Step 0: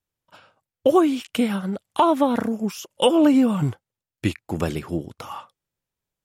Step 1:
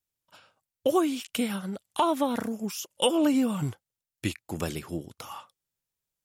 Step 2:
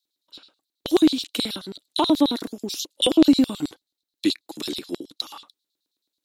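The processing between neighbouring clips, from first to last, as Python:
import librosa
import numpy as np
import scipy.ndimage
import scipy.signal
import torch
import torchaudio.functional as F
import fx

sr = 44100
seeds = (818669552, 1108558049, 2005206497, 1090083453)

y1 = fx.high_shelf(x, sr, hz=3400.0, db=10.5)
y1 = y1 * 10.0 ** (-7.5 / 20.0)
y2 = fx.peak_eq(y1, sr, hz=3900.0, db=12.0, octaves=0.37)
y2 = fx.filter_lfo_highpass(y2, sr, shape='square', hz=9.3, low_hz=300.0, high_hz=4100.0, q=4.4)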